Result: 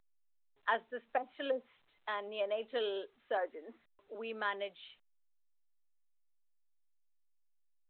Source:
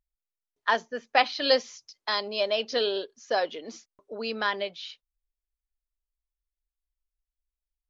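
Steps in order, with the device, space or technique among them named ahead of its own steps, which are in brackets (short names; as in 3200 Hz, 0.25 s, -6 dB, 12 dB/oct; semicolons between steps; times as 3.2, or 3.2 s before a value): 0.81–2.62 treble ducked by the level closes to 400 Hz, closed at -17.5 dBFS; 3.37–4.15 Chebyshev band-pass 230–2000 Hz, order 4; telephone (BPF 260–3100 Hz; gain -8 dB; A-law 64 kbps 8000 Hz)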